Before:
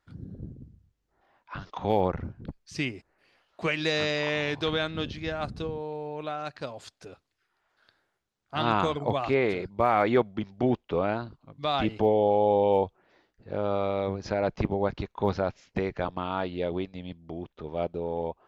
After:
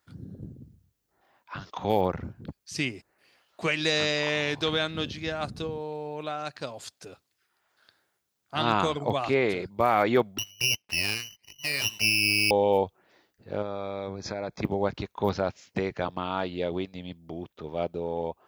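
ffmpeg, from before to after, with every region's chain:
-filter_complex "[0:a]asettb=1/sr,asplit=3[s0][s1][s2];[s0]atrim=end=10.384[s3];[s1]atrim=start=10.38:end=12.51,asetpts=PTS-STARTPTS,afade=t=in:d=0.004:c=qsin,afade=t=out:st=2.126:d=0.004:c=qsin,highpass=f=61:p=1,lowpass=f=2600:t=q:w=0.5098,lowpass=f=2600:t=q:w=0.6013,lowpass=f=2600:t=q:w=0.9,lowpass=f=2600:t=q:w=2.563,afreqshift=-3100,aeval=exprs='max(val(0),0)':c=same[s4];[s2]atrim=start=12.506[s5];[s3][s4]acrossfade=d=0.004:c1=hsin:c2=qsin[s6];[s6][s5]acrossfade=d=0.004:c1=qsin:c2=hsin,asettb=1/sr,asplit=3[s7][s8][s9];[s7]atrim=end=13.624[s10];[s8]atrim=start=13.62:end=14.63,asetpts=PTS-STARTPTS,afade=t=in:d=0.004:c=qsin,afade=t=out:st=1.006:d=0.004:c=qsin,acompressor=threshold=0.0316:ratio=3:attack=3.2:release=140:knee=1:detection=peak,asuperstop=centerf=2900:order=12:qfactor=5.3[s11];[s9]atrim=start=14.626[s12];[s10][s11]acrossfade=d=0.004:c1=hsin:c2=qsin[s13];[s13][s12]acrossfade=d=0.004:c1=qsin:c2=hsin,highpass=78,aemphasis=mode=production:type=50kf"

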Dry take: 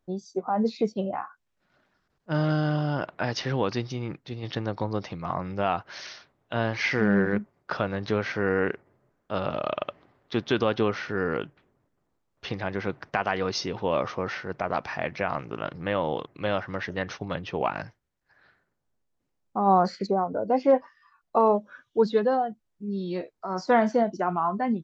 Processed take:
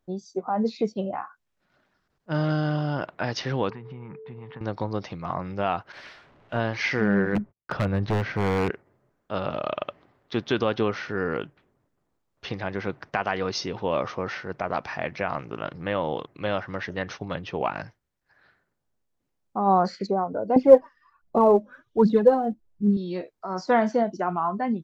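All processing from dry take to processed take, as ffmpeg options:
-filter_complex "[0:a]asettb=1/sr,asplit=3[s0][s1][s2];[s0]atrim=end=3.704[s3];[s1]atrim=start=3.7:end=4.61,asetpts=PTS-STARTPTS,afade=t=in:d=0.004:c=qsin,afade=t=out:st=0.906:d=0.004:c=qsin,aeval=exprs='val(0)+0.0126*sin(2*PI*440*n/s)':c=same,acompressor=threshold=0.0178:ratio=6:attack=3.2:release=140:knee=1:detection=peak,highpass=110,equalizer=f=130:t=q:w=4:g=4,equalizer=f=210:t=q:w=4:g=4,equalizer=f=310:t=q:w=4:g=-9,equalizer=f=630:t=q:w=4:g=-9,equalizer=f=960:t=q:w=4:g=10,lowpass=f=2300:w=0.5412,lowpass=f=2300:w=1.3066[s4];[s2]atrim=start=4.606[s5];[s3][s4]acrossfade=d=0.004:c1=hsin:c2=qsin[s6];[s6][s5]acrossfade=d=0.004:c1=qsin:c2=hsin,asettb=1/sr,asplit=3[s7][s8][s9];[s7]atrim=end=5.924[s10];[s8]atrim=start=5.92:end=6.6,asetpts=PTS-STARTPTS,afade=t=in:d=0.004:c=qsin,afade=t=out:st=0.676:d=0.004:c=qsin,aeval=exprs='val(0)+0.5*0.0224*sgn(val(0))':c=same,agate=range=0.0224:threshold=0.0316:ratio=3:release=100:detection=peak,lowpass=2600[s11];[s9]atrim=start=6.596[s12];[s10][s11]acrossfade=d=0.004:c1=hsin:c2=qsin[s13];[s13][s12]acrossfade=d=0.004:c1=qsin:c2=hsin,asettb=1/sr,asplit=3[s14][s15][s16];[s14]atrim=end=7.354[s17];[s15]atrim=start=7.35:end=8.7,asetpts=PTS-STARTPTS,afade=t=in:d=0.004:c=qsin,afade=t=out:st=1.346:d=0.004:c=qsin,aemphasis=mode=reproduction:type=bsi,agate=range=0.0158:threshold=0.00178:ratio=16:release=100:detection=peak,aeval=exprs='0.133*(abs(mod(val(0)/0.133+3,4)-2)-1)':c=same[s18];[s16]atrim=start=8.696[s19];[s17][s18]acrossfade=d=0.004:c1=hsin:c2=qsin[s20];[s20][s19]acrossfade=d=0.004:c1=qsin:c2=hsin,asettb=1/sr,asplit=3[s21][s22][s23];[s21]atrim=end=20.564[s24];[s22]atrim=start=20.56:end=22.97,asetpts=PTS-STARTPTS,afade=t=in:d=0.004:c=qsin,afade=t=out:st=2.406:d=0.004:c=qsin,tiltshelf=f=820:g=7.5,aphaser=in_gain=1:out_gain=1:delay=4.2:decay=0.56:speed=1.3:type=triangular[s25];[s23]atrim=start=22.966[s26];[s24][s25]acrossfade=d=0.004:c1=hsin:c2=qsin[s27];[s27][s26]acrossfade=d=0.004:c1=qsin:c2=hsin"

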